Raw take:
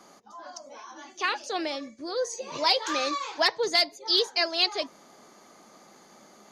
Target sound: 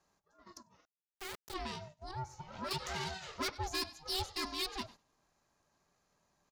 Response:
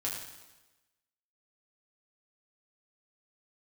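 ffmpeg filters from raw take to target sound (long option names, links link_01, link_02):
-filter_complex "[0:a]bandreject=frequency=1100:width=6.6,aecho=1:1:99|198|297:0.0794|0.035|0.0154,aeval=exprs='(tanh(17.8*val(0)+0.5)-tanh(0.5))/17.8':channel_layout=same,agate=range=-13dB:threshold=-45dB:ratio=16:detection=peak,asettb=1/sr,asplit=3[link_01][link_02][link_03];[link_01]atrim=end=0.854[link_04];[link_02]atrim=start=0.85:end=1.54,asetpts=PTS-STARTPTS,afade=type=in:duration=0.004:curve=qsin,afade=type=out:start_time=0.686:duration=0.004:curve=qsin,acrusher=bits=3:dc=4:mix=0:aa=0.000001[link_05];[link_03]atrim=start=1.536[link_06];[link_04][link_05]acrossfade=duration=0.004:curve1=hsin:curve2=qsin[link_07];[link_07][link_06]acrossfade=duration=0.004:curve1=qsin:curve2=hsin,asettb=1/sr,asplit=3[link_08][link_09][link_10];[link_08]atrim=end=2.114[link_11];[link_09]atrim=start=2.11:end=2.71,asetpts=PTS-STARTPTS,afade=type=in:duration=0.004:curve=qsin,afade=type=out:start_time=0.596:duration=0.004:curve=qsin,asplit=2[link_12][link_13];[link_13]highpass=frequency=720:poles=1,volume=7dB,asoftclip=type=tanh:threshold=-21.5dB[link_14];[link_12][link_14]amix=inputs=2:normalize=0,lowpass=frequency=1000:poles=1,volume=-6dB[link_15];[link_10]atrim=start=2.706[link_16];[link_11][link_15]acrossfade=duration=0.004:curve1=hsin:curve2=qsin[link_17];[link_17][link_16]acrossfade=duration=0.004:curve1=qsin:curve2=hsin,aeval=exprs='val(0)*sin(2*PI*380*n/s)':channel_layout=same,volume=-4.5dB"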